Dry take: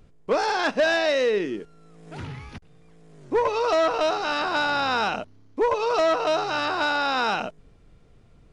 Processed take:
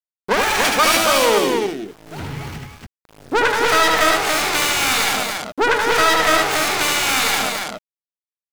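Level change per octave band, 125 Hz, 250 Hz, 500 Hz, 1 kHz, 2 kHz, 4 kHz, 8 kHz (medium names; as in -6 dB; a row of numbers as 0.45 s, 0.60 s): +8.5 dB, +6.0 dB, +3.0 dB, +6.5 dB, +9.0 dB, +11.5 dB, +22.5 dB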